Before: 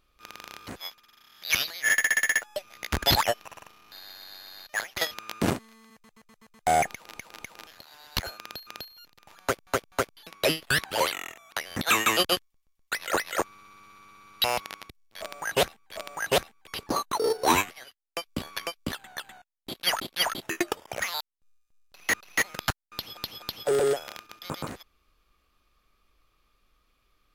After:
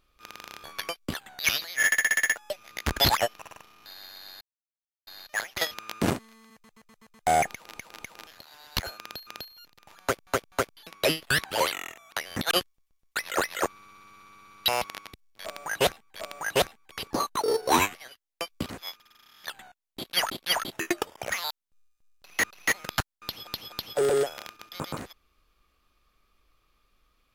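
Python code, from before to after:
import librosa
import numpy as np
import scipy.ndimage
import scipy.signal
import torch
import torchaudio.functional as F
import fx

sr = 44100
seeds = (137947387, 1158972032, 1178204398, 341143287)

y = fx.edit(x, sr, fx.swap(start_s=0.64, length_s=0.81, other_s=18.42, other_length_s=0.75),
    fx.insert_silence(at_s=4.47, length_s=0.66),
    fx.cut(start_s=11.91, length_s=0.36), tone=tone)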